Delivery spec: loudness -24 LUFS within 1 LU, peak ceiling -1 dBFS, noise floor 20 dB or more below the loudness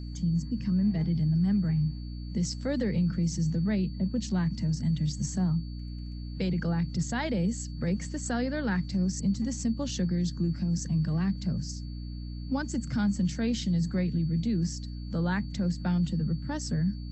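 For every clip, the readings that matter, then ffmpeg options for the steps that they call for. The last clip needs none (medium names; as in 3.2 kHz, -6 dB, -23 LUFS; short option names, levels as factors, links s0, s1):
hum 60 Hz; highest harmonic 300 Hz; hum level -35 dBFS; steady tone 4.5 kHz; tone level -54 dBFS; loudness -29.5 LUFS; peak level -17.5 dBFS; loudness target -24.0 LUFS
-> -af "bandreject=f=60:t=h:w=4,bandreject=f=120:t=h:w=4,bandreject=f=180:t=h:w=4,bandreject=f=240:t=h:w=4,bandreject=f=300:t=h:w=4"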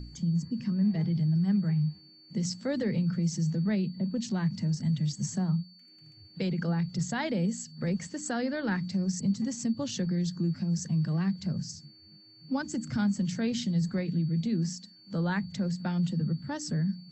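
hum not found; steady tone 4.5 kHz; tone level -54 dBFS
-> -af "bandreject=f=4500:w=30"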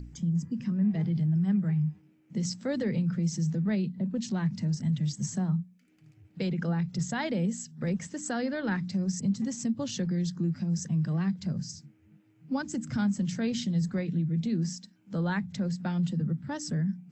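steady tone not found; loudness -30.5 LUFS; peak level -18.5 dBFS; loudness target -24.0 LUFS
-> -af "volume=2.11"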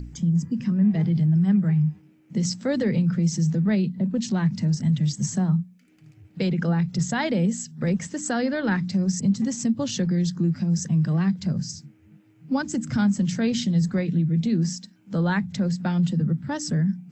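loudness -24.0 LUFS; peak level -12.0 dBFS; noise floor -56 dBFS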